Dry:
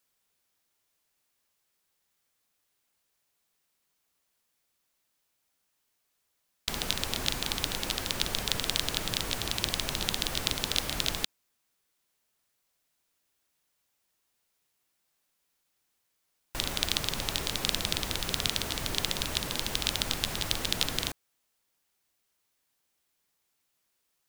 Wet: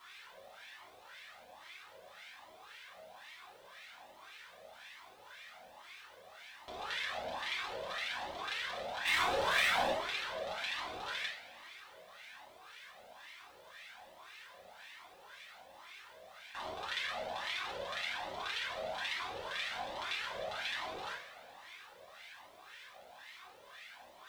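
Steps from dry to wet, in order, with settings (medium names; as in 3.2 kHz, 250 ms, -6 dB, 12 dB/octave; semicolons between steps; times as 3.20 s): spectral levelling over time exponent 0.4; wah-wah 1.9 Hz 550–2200 Hz, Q 4.5; 9.05–9.92 s: waveshaping leveller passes 3; two-slope reverb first 0.47 s, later 2.1 s, from -18 dB, DRR -7.5 dB; in parallel at +1 dB: compression, threshold -48 dBFS, peak gain reduction 25.5 dB; on the sum: word length cut 10-bit, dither none; Shepard-style flanger rising 1.2 Hz; trim -3.5 dB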